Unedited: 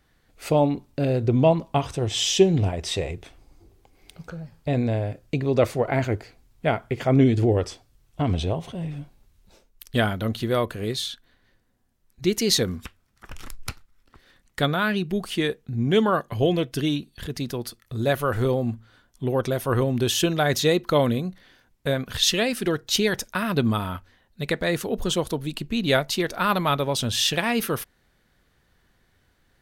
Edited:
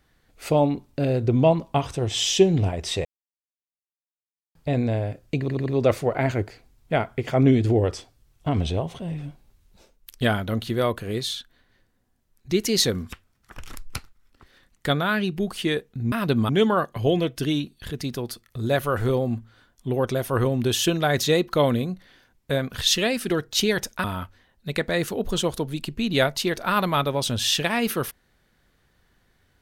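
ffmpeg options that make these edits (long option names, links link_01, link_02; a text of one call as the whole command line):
ffmpeg -i in.wav -filter_complex "[0:a]asplit=9[link_01][link_02][link_03][link_04][link_05][link_06][link_07][link_08][link_09];[link_01]atrim=end=3.05,asetpts=PTS-STARTPTS,afade=type=out:start_time=3.046:duration=0.004:curve=hsin[link_10];[link_02]atrim=start=3.05:end=4.55,asetpts=PTS-STARTPTS,volume=0[link_11];[link_03]atrim=start=4.55:end=5.482,asetpts=PTS-STARTPTS,afade=type=in:duration=0.004:curve=hsin[link_12];[link_04]atrim=start=5.388:end=5.482[link_13];[link_05]atrim=start=5.388:end=5.482[link_14];[link_06]atrim=start=5.388:end=15.852[link_15];[link_07]atrim=start=23.398:end=23.772[link_16];[link_08]atrim=start=15.848:end=23.402[link_17];[link_09]atrim=start=23.768[link_18];[link_10][link_11][link_12]concat=n=3:v=0:a=1[link_19];[link_19][link_13]acrossfade=duration=0.004:curve1=hsin:curve2=hsin[link_20];[link_20][link_14]acrossfade=duration=0.004:curve1=hsin:curve2=hsin[link_21];[link_21][link_15]acrossfade=duration=0.004:curve1=hsin:curve2=hsin[link_22];[link_22][link_16]acrossfade=duration=0.004:curve1=hsin:curve2=hsin[link_23];[link_23][link_17]acrossfade=duration=0.004:curve1=hsin:curve2=hsin[link_24];[link_24][link_18]acrossfade=duration=0.004:curve1=hsin:curve2=hsin" out.wav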